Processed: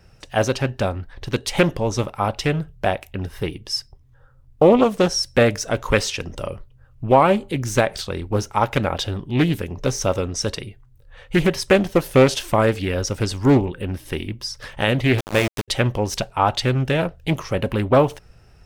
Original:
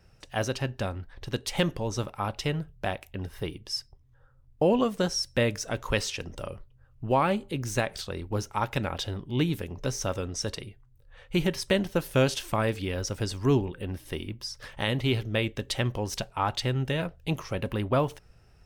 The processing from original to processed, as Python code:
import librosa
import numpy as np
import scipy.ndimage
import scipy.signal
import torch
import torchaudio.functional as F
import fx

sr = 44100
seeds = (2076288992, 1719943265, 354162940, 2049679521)

y = fx.sample_gate(x, sr, floor_db=-28.0, at=(15.18, 15.68))
y = fx.dynamic_eq(y, sr, hz=650.0, q=1.4, threshold_db=-36.0, ratio=4.0, max_db=4)
y = fx.doppler_dist(y, sr, depth_ms=0.36)
y = y * 10.0 ** (7.5 / 20.0)